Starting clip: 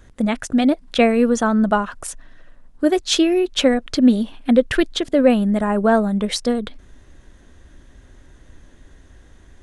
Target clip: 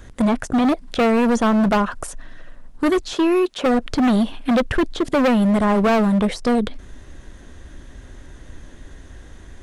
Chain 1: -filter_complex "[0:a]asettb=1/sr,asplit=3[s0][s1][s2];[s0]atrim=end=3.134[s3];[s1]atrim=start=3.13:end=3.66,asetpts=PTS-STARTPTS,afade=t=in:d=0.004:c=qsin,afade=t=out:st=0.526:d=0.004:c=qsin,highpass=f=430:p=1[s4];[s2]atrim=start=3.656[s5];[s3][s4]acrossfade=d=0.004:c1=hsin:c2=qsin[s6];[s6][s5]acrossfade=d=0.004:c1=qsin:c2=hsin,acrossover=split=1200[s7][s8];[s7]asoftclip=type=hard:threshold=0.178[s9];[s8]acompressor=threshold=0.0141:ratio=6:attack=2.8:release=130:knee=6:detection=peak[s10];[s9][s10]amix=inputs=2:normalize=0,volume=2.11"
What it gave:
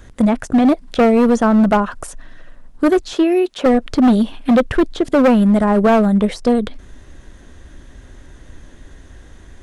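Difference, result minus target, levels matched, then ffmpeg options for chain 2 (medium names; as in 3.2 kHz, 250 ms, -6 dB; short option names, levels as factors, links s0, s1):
hard clipper: distortion -4 dB
-filter_complex "[0:a]asettb=1/sr,asplit=3[s0][s1][s2];[s0]atrim=end=3.134[s3];[s1]atrim=start=3.13:end=3.66,asetpts=PTS-STARTPTS,afade=t=in:d=0.004:c=qsin,afade=t=out:st=0.526:d=0.004:c=qsin,highpass=f=430:p=1[s4];[s2]atrim=start=3.656[s5];[s3][s4]acrossfade=d=0.004:c1=hsin:c2=qsin[s6];[s6][s5]acrossfade=d=0.004:c1=qsin:c2=hsin,acrossover=split=1200[s7][s8];[s7]asoftclip=type=hard:threshold=0.0891[s9];[s8]acompressor=threshold=0.0141:ratio=6:attack=2.8:release=130:knee=6:detection=peak[s10];[s9][s10]amix=inputs=2:normalize=0,volume=2.11"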